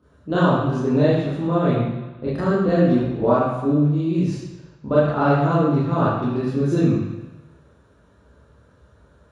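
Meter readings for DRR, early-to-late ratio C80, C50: −9.5 dB, 3.0 dB, −1.0 dB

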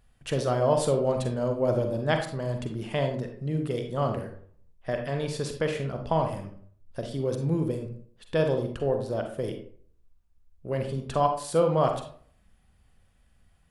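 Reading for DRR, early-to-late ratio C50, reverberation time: 4.5 dB, 7.0 dB, 0.55 s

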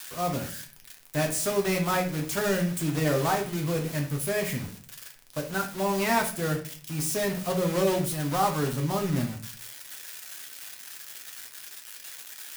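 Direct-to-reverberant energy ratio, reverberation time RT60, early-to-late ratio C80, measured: 1.5 dB, 0.40 s, 15.0 dB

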